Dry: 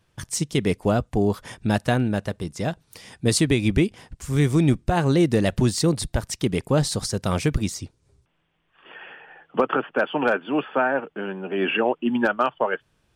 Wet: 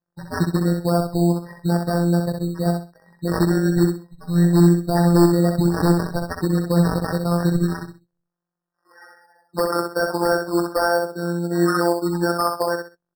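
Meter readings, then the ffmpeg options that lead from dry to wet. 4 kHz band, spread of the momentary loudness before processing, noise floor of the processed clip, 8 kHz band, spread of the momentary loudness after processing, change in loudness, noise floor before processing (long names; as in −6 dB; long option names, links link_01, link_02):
−2.5 dB, 11 LU, −83 dBFS, −4.0 dB, 9 LU, +3.0 dB, −68 dBFS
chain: -af "highpass=frequency=47:width=0.5412,highpass=frequency=47:width=1.3066,bandreject=frequency=1700:width=12,afftdn=noise_reduction=22:noise_floor=-37,alimiter=limit=-12.5dB:level=0:latency=1:release=167,afftfilt=real='hypot(re,im)*cos(PI*b)':imag='0':win_size=1024:overlap=0.75,acrusher=samples=11:mix=1:aa=0.000001,aeval=exprs='0.168*(abs(mod(val(0)/0.168+3,4)-2)-1)':channel_layout=same,aecho=1:1:64|128|192:0.562|0.146|0.038,afftfilt=real='re*eq(mod(floor(b*sr/1024/1900),2),0)':imag='im*eq(mod(floor(b*sr/1024/1900),2),0)':win_size=1024:overlap=0.75,volume=6.5dB"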